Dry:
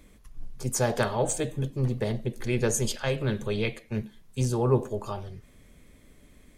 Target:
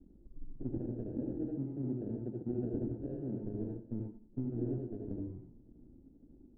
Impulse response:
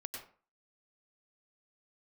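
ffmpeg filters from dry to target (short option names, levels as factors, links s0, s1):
-filter_complex "[0:a]aeval=exprs='if(lt(val(0),0),0.251*val(0),val(0))':c=same,asettb=1/sr,asplit=3[s0][s1][s2];[s0]atrim=end=1.174[s3];[s1]atrim=start=1.17:end=3.43,asetpts=PTS-STARTPTS,afade=t=in:d=0.004:c=qsin,afade=t=out:st=2.256:d=0.004:c=qsin,highpass=140[s4];[s2]atrim=start=3.426[s5];[s3][s4]acrossfade=d=0.004:c1=hsin:c2=qsin[s6];[s6][s5]acrossfade=d=0.004:c1=qsin:c2=hsin,acompressor=threshold=0.0251:ratio=6,acrusher=samples=40:mix=1:aa=0.000001,lowpass=f=300:t=q:w=3.5[s7];[1:a]atrim=start_sample=2205,asetrate=57330,aresample=44100[s8];[s7][s8]afir=irnorm=-1:irlink=0,volume=1.19"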